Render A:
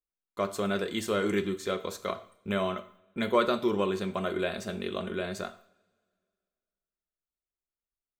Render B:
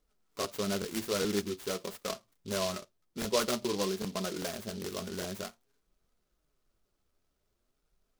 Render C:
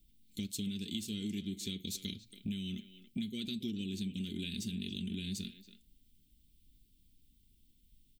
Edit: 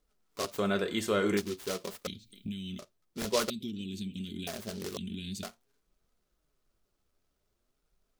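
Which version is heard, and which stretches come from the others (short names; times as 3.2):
B
0.58–1.37 from A
2.07–2.79 from C
3.5–4.47 from C
4.97–5.43 from C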